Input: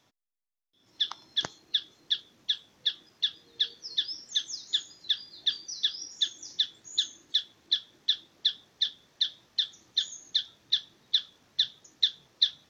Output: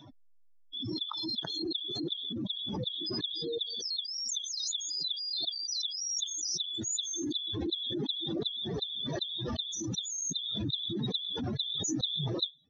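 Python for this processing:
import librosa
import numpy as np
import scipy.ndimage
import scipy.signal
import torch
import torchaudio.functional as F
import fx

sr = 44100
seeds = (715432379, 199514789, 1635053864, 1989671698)

y = fx.spec_expand(x, sr, power=3.5)
y = fx.pre_swell(y, sr, db_per_s=21.0)
y = y * librosa.db_to_amplitude(-8.0)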